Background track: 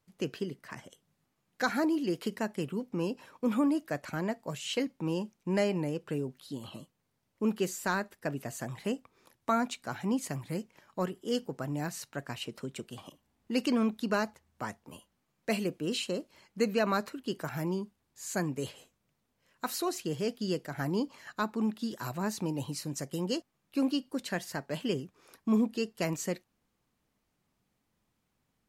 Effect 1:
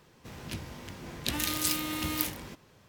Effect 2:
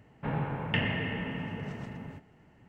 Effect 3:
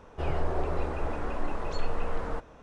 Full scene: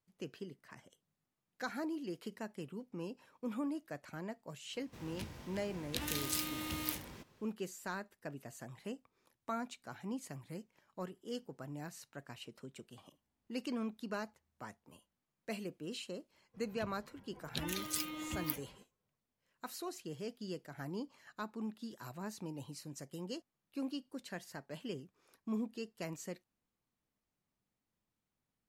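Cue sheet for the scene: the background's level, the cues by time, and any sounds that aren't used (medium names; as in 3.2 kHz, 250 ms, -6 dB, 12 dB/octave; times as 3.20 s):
background track -11 dB
4.68 s: add 1 -7.5 dB, fades 0.10 s
16.29 s: add 1 -5.5 dB + expander on every frequency bin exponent 2
not used: 2, 3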